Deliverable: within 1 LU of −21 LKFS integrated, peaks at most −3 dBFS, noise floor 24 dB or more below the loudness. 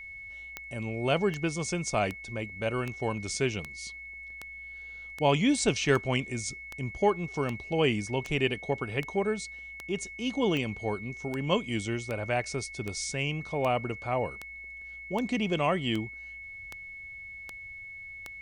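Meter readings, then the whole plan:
number of clicks 24; interfering tone 2,200 Hz; level of the tone −41 dBFS; integrated loudness −30.5 LKFS; sample peak −11.0 dBFS; target loudness −21.0 LKFS
→ click removal
notch filter 2,200 Hz, Q 30
level +9.5 dB
brickwall limiter −3 dBFS

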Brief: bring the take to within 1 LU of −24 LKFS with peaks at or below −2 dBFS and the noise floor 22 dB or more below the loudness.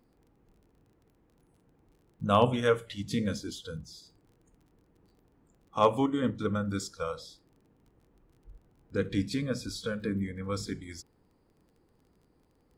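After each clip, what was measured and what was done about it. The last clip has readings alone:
crackle rate 21 per second; integrated loudness −31.0 LKFS; sample peak −10.5 dBFS; target loudness −24.0 LKFS
→ click removal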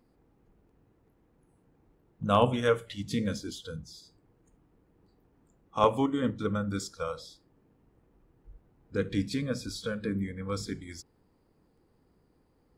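crackle rate 0 per second; integrated loudness −31.0 LKFS; sample peak −9.5 dBFS; target loudness −24.0 LKFS
→ level +7 dB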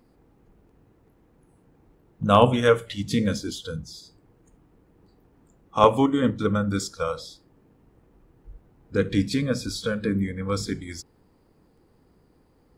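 integrated loudness −24.0 LKFS; sample peak −2.5 dBFS; background noise floor −61 dBFS

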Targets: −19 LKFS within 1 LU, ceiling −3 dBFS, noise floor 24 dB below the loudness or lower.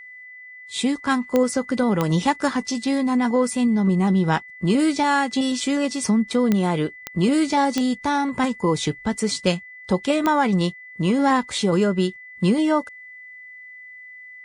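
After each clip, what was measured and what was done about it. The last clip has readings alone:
number of clicks 6; interfering tone 2,000 Hz; level of the tone −39 dBFS; integrated loudness −21.5 LKFS; sample peak −4.5 dBFS; target loudness −19.0 LKFS
→ click removal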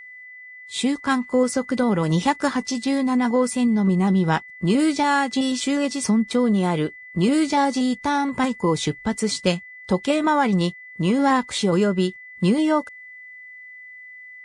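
number of clicks 0; interfering tone 2,000 Hz; level of the tone −39 dBFS
→ notch filter 2,000 Hz, Q 30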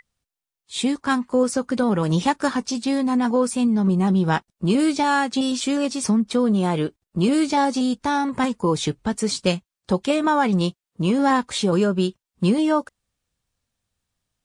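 interfering tone none found; integrated loudness −21.5 LKFS; sample peak −6.0 dBFS; target loudness −19.0 LKFS
→ level +2.5 dB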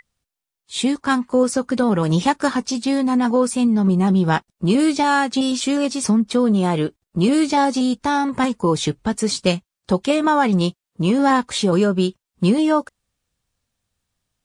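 integrated loudness −19.0 LKFS; sample peak −3.5 dBFS; background noise floor −86 dBFS

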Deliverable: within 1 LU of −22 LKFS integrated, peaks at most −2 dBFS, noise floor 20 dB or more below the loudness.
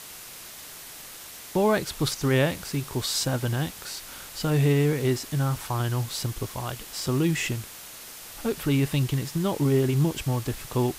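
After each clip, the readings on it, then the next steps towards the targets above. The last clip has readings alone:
background noise floor −43 dBFS; target noise floor −47 dBFS; integrated loudness −26.5 LKFS; sample peak −11.0 dBFS; target loudness −22.0 LKFS
→ broadband denoise 6 dB, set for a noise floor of −43 dBFS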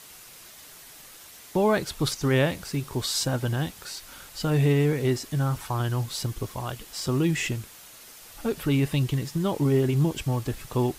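background noise floor −48 dBFS; integrated loudness −26.5 LKFS; sample peak −11.0 dBFS; target loudness −22.0 LKFS
→ level +4.5 dB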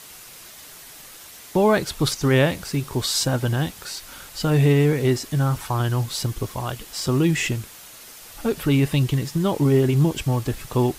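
integrated loudness −22.0 LKFS; sample peak −6.5 dBFS; background noise floor −43 dBFS

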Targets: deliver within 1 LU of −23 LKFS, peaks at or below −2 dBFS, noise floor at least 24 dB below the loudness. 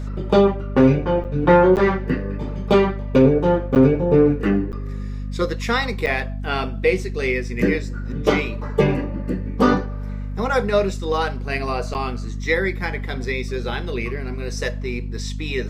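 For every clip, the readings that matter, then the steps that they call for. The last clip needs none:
number of dropouts 6; longest dropout 8.7 ms; mains hum 50 Hz; hum harmonics up to 250 Hz; level of the hum −25 dBFS; integrated loudness −20.5 LKFS; sample peak −3.5 dBFS; target loudness −23.0 LKFS
→ repair the gap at 0:01.24/0:01.76/0:03.75/0:04.72/0:06.06/0:11.94, 8.7 ms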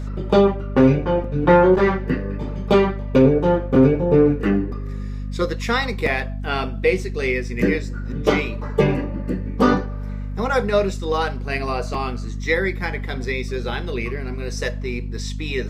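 number of dropouts 0; mains hum 50 Hz; hum harmonics up to 250 Hz; level of the hum −25 dBFS
→ mains-hum notches 50/100/150/200/250 Hz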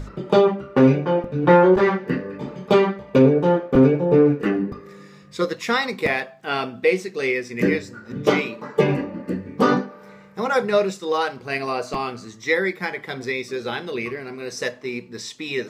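mains hum none found; integrated loudness −21.0 LKFS; sample peak −3.5 dBFS; target loudness −23.0 LKFS
→ level −2 dB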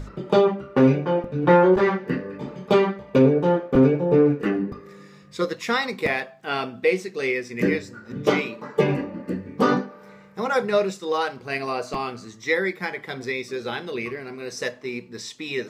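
integrated loudness −23.0 LKFS; sample peak −5.5 dBFS; background noise floor −47 dBFS

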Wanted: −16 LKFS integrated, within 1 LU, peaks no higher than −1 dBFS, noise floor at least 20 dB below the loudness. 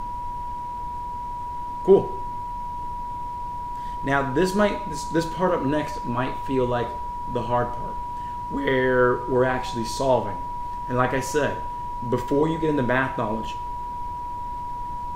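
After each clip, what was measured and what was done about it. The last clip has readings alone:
interfering tone 970 Hz; level of the tone −29 dBFS; background noise floor −32 dBFS; target noise floor −46 dBFS; integrated loudness −25.5 LKFS; sample peak −4.0 dBFS; target loudness −16.0 LKFS
→ notch filter 970 Hz, Q 30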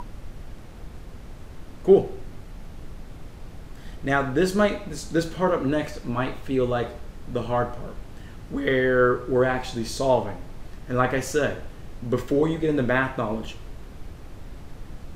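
interfering tone none found; background noise floor −42 dBFS; target noise floor −45 dBFS
→ noise reduction from a noise print 6 dB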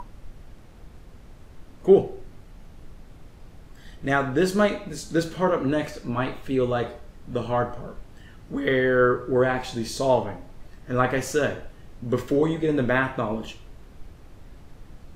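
background noise floor −47 dBFS; integrated loudness −24.5 LKFS; sample peak −4.5 dBFS; target loudness −16.0 LKFS
→ level +8.5 dB
brickwall limiter −1 dBFS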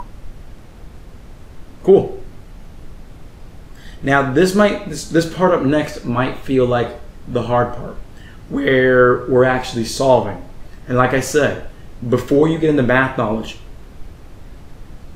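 integrated loudness −16.5 LKFS; sample peak −1.0 dBFS; background noise floor −39 dBFS

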